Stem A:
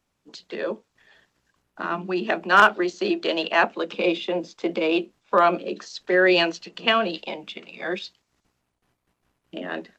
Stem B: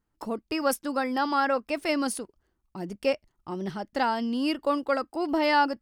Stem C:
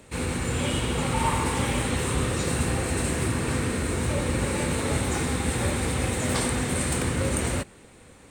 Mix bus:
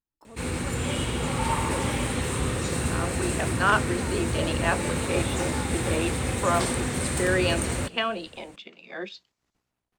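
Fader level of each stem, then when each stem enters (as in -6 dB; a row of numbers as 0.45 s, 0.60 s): -7.0 dB, -17.0 dB, -1.5 dB; 1.10 s, 0.00 s, 0.25 s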